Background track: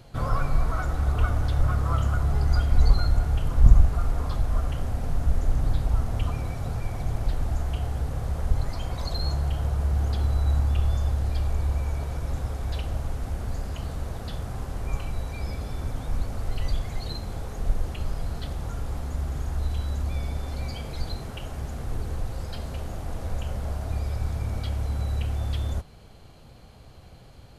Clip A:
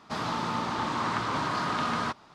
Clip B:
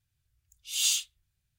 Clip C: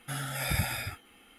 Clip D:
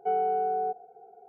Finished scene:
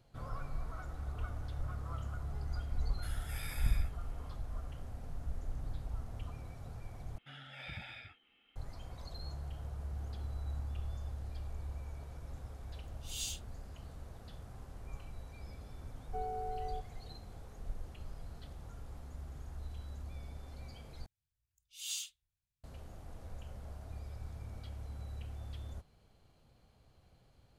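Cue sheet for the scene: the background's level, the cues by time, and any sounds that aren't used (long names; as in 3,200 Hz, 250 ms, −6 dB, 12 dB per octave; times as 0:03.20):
background track −17 dB
0:02.94: mix in C −13 dB + high-pass filter 930 Hz
0:07.18: overwrite with C −17.5 dB + low-pass with resonance 3,100 Hz, resonance Q 2.8
0:12.36: mix in B −14.5 dB
0:16.08: mix in D −13.5 dB
0:21.06: overwrite with B −14 dB
not used: A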